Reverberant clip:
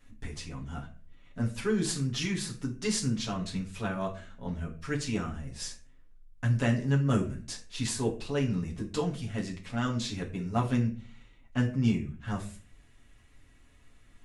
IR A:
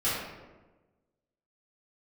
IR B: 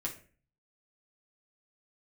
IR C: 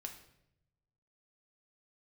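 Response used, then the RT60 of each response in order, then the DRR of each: B; 1.2 s, 0.40 s, 0.80 s; -12.5 dB, -3.0 dB, 2.5 dB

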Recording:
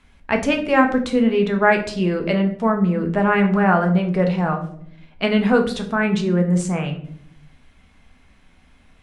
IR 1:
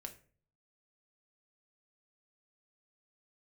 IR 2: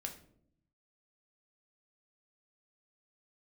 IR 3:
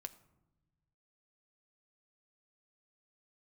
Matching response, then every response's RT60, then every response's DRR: 2; 0.45 s, 0.65 s, no single decay rate; 4.5 dB, 3.0 dB, 10.5 dB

